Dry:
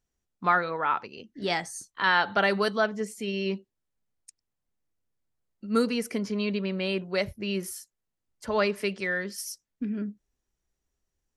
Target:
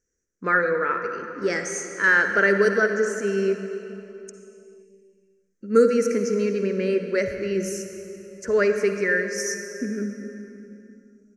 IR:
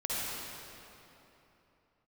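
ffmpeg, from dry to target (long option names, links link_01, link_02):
-filter_complex "[0:a]firequalizer=gain_entry='entry(160,0);entry(300,6);entry(480,12);entry(760,-14);entry(1600,10);entry(3500,-16);entry(6100,14);entry(8900,-1);entry(13000,-8)':delay=0.05:min_phase=1,asplit=2[link_01][link_02];[1:a]atrim=start_sample=2205[link_03];[link_02][link_03]afir=irnorm=-1:irlink=0,volume=-10.5dB[link_04];[link_01][link_04]amix=inputs=2:normalize=0,volume=-2.5dB"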